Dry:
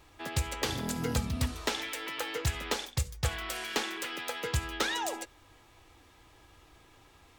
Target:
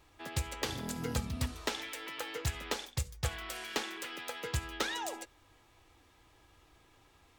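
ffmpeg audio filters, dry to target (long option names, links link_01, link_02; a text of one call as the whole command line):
ffmpeg -i in.wav -af "aeval=exprs='0.141*(cos(1*acos(clip(val(0)/0.141,-1,1)))-cos(1*PI/2))+0.0141*(cos(3*acos(clip(val(0)/0.141,-1,1)))-cos(3*PI/2))':channel_layout=same,volume=-2dB" out.wav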